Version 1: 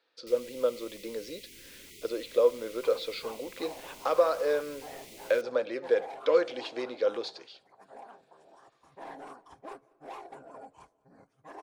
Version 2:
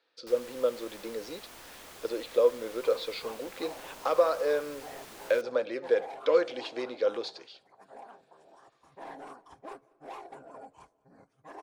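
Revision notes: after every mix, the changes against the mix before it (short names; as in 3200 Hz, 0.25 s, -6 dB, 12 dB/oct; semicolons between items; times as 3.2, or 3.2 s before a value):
first sound: remove brick-wall FIR band-stop 460–1900 Hz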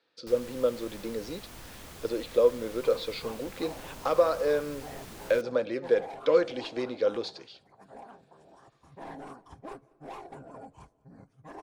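master: add tone controls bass +14 dB, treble +1 dB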